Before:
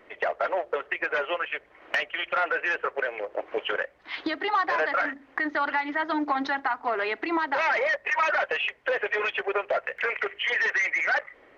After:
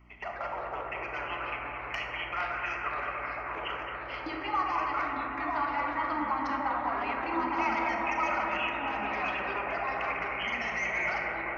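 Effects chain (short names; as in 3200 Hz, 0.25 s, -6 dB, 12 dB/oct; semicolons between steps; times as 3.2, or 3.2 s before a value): hum 60 Hz, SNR 24 dB; fixed phaser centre 2500 Hz, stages 8; echoes that change speed 93 ms, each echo -3 st, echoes 3, each echo -6 dB; analogue delay 0.217 s, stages 4096, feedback 84%, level -8 dB; on a send at -2 dB: reverb RT60 1.9 s, pre-delay 22 ms; on the sum: gain -5.5 dB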